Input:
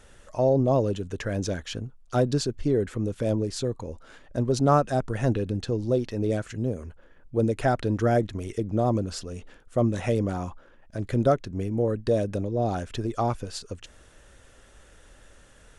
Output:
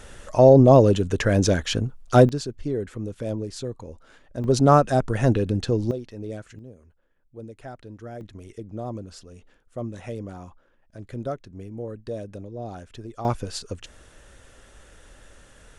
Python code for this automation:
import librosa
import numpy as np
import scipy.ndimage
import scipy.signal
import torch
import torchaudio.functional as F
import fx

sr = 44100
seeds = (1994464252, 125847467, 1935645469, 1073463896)

y = fx.gain(x, sr, db=fx.steps((0.0, 9.0), (2.29, -3.5), (4.44, 4.5), (5.91, -8.0), (6.59, -16.0), (8.21, -9.0), (13.25, 3.0)))